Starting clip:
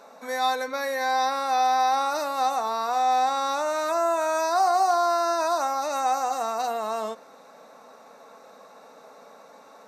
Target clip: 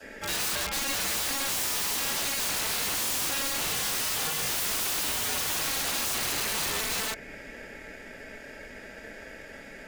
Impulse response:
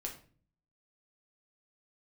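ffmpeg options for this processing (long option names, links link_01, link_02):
-filter_complex "[0:a]adynamicequalizer=threshold=0.0126:dfrequency=1100:dqfactor=1.5:tfrequency=1100:tqfactor=1.5:attack=5:release=100:ratio=0.375:range=4:mode=boostabove:tftype=bell,asplit=2[link_01][link_02];[link_02]acompressor=threshold=-36dB:ratio=6,volume=-0.5dB[link_03];[link_01][link_03]amix=inputs=2:normalize=0,aeval=exprs='val(0)*sin(2*PI*1100*n/s)':channel_layout=same,aeval=exprs='(mod(20*val(0)+1,2)-1)/20':channel_layout=same,volume=2dB"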